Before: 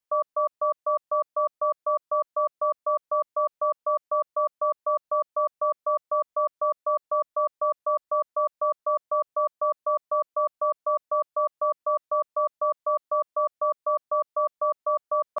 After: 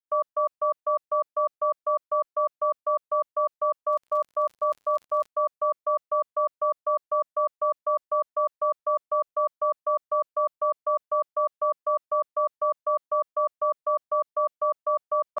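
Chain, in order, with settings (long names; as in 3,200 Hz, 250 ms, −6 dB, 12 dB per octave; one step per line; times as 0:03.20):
0:03.90–0:05.27: surface crackle 71 per second −39 dBFS
downward expander −29 dBFS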